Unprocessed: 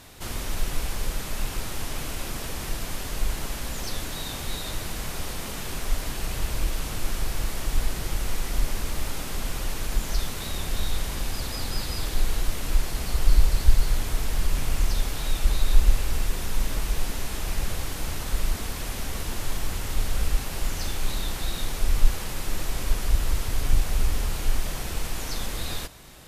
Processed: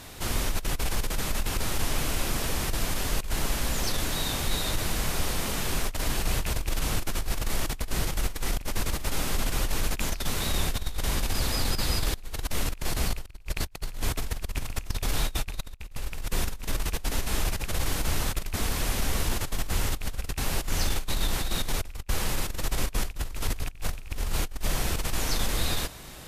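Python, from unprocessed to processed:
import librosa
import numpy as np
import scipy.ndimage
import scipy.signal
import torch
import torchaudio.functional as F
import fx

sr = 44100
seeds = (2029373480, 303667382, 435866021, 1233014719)

y = fx.rattle_buzz(x, sr, strikes_db=-20.0, level_db=-14.0)
y = fx.over_compress(y, sr, threshold_db=-26.0, ratio=-0.5)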